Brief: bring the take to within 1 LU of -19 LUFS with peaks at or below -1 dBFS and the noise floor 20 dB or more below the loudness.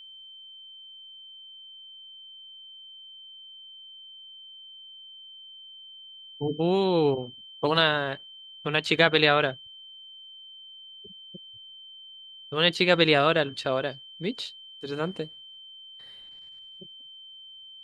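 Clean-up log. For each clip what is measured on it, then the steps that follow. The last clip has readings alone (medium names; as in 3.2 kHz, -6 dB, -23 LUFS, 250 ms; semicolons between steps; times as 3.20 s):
steady tone 3.1 kHz; tone level -44 dBFS; loudness -25.0 LUFS; peak level -3.5 dBFS; loudness target -19.0 LUFS
-> band-stop 3.1 kHz, Q 30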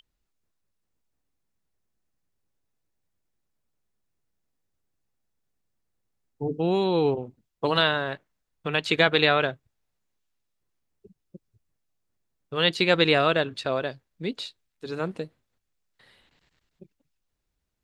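steady tone not found; loudness -24.5 LUFS; peak level -3.5 dBFS; loudness target -19.0 LUFS
-> trim +5.5 dB; peak limiter -1 dBFS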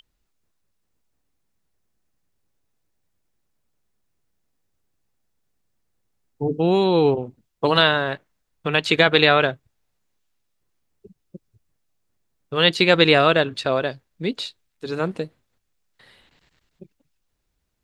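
loudness -19.0 LUFS; peak level -1.0 dBFS; noise floor -74 dBFS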